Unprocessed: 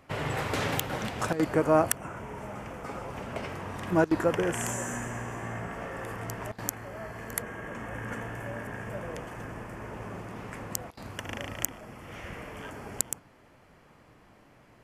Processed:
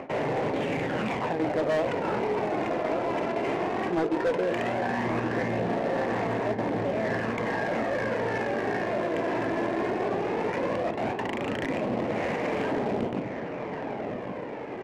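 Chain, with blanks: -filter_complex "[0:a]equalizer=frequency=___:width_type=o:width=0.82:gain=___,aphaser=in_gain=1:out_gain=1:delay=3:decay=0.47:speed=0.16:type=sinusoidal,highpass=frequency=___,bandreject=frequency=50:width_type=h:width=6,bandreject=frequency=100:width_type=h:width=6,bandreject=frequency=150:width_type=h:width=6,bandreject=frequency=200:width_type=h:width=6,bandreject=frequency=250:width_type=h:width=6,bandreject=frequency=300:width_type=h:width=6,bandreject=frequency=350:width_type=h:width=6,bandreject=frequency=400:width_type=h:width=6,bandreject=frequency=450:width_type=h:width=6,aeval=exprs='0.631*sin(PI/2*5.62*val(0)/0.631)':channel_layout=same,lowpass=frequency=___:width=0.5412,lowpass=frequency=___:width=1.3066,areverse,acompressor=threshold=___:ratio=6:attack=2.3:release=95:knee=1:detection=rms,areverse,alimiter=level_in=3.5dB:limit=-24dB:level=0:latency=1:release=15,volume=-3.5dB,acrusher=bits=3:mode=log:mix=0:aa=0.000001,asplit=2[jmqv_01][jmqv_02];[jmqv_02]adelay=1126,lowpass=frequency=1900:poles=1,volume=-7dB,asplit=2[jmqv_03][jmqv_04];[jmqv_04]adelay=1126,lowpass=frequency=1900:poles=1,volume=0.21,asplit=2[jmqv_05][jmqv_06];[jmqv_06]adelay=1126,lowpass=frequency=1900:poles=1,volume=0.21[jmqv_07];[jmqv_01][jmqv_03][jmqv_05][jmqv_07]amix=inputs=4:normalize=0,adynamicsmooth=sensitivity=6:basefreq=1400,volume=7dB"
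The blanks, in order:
1300, -12, 260, 2800, 2800, -31dB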